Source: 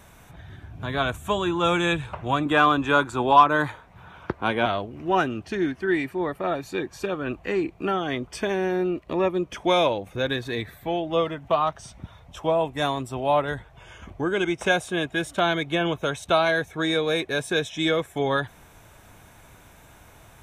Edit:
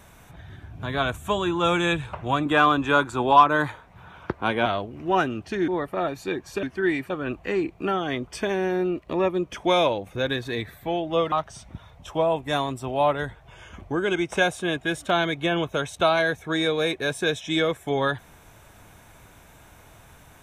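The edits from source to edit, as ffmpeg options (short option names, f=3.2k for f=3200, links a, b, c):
-filter_complex "[0:a]asplit=5[a][b][c][d][e];[a]atrim=end=5.682[f];[b]atrim=start=6.148:end=7.102[g];[c]atrim=start=5.678:end=6.152[h];[d]atrim=start=7.098:end=11.322[i];[e]atrim=start=11.608[j];[f][g]acrossfade=d=0.004:c1=hsin:c2=hsin[k];[k][h]acrossfade=d=0.004:c1=hsin:c2=hsin[l];[l][i]acrossfade=d=0.004:c1=hsin:c2=hsin[m];[m][j]acrossfade=d=0.004:c1=hsin:c2=hsin"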